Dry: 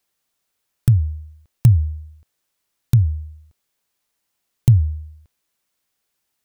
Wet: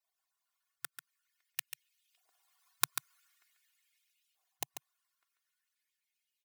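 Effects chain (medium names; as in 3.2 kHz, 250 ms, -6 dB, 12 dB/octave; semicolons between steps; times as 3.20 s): harmonic-percussive separation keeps percussive; Doppler pass-by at 2.95 s, 13 m/s, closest 6.1 m; comb 2.8 ms, depth 98%; on a send: delay 141 ms -7.5 dB; on the sum: LFO high-pass saw up 0.46 Hz 730–2900 Hz; trim +4 dB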